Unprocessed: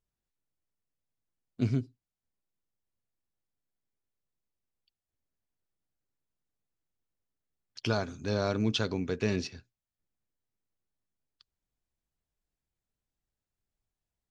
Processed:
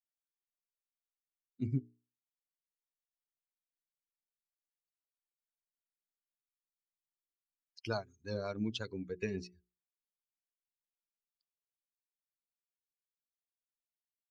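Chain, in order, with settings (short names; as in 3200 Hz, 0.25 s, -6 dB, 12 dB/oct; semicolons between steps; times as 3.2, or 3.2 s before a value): per-bin expansion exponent 2; rotary speaker horn 5.5 Hz; transient shaper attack +2 dB, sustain -4 dB; notches 60/120/180/240/300/360/420 Hz; gain -2.5 dB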